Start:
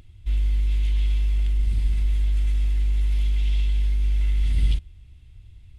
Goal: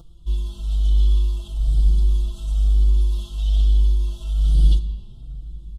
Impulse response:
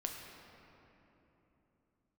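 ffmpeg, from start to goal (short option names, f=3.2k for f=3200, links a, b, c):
-filter_complex "[0:a]asuperstop=centerf=2000:order=8:qfactor=1.1,aecho=1:1:5.9:0.81,asplit=2[a][b];[1:a]atrim=start_sample=2205[c];[b][c]afir=irnorm=-1:irlink=0,volume=-1.5dB[d];[a][d]amix=inputs=2:normalize=0,asplit=2[e][f];[f]adelay=3.9,afreqshift=1.1[g];[e][g]amix=inputs=2:normalize=1"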